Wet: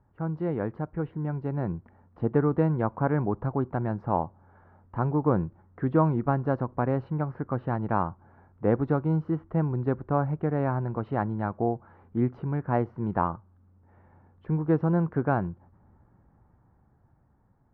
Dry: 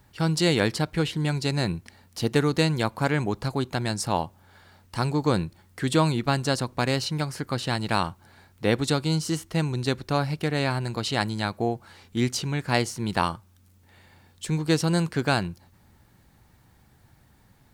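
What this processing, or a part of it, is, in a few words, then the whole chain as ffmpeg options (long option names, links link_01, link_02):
action camera in a waterproof case: -af "lowpass=frequency=1300:width=0.5412,lowpass=frequency=1300:width=1.3066,dynaudnorm=framelen=380:gausssize=9:maxgain=6.5dB,volume=-6.5dB" -ar 48000 -c:a aac -b:a 128k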